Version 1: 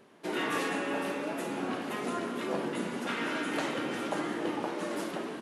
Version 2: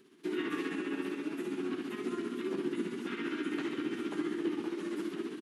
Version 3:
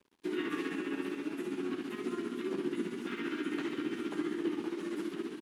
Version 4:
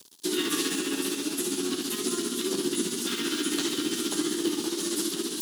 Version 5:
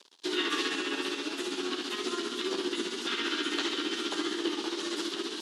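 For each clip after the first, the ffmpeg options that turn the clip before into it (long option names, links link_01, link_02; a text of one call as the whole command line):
ffmpeg -i in.wav -filter_complex "[0:a]tremolo=f=15:d=0.49,acrossover=split=2800[link_01][link_02];[link_02]acompressor=threshold=-57dB:ratio=4:attack=1:release=60[link_03];[link_01][link_03]amix=inputs=2:normalize=0,firequalizer=gain_entry='entry(120,0);entry(360,12);entry(540,-13);entry(1200,0);entry(3200,7)':delay=0.05:min_phase=1,volume=-6dB" out.wav
ffmpeg -i in.wav -af "aeval=exprs='sgn(val(0))*max(abs(val(0))-0.00112,0)':channel_layout=same" out.wav
ffmpeg -i in.wav -af "areverse,acompressor=mode=upward:threshold=-39dB:ratio=2.5,areverse,aexciter=amount=9.2:drive=6:freq=3400,volume=5.5dB" out.wav
ffmpeg -i in.wav -af "highpass=480,lowpass=3400,volume=3dB" out.wav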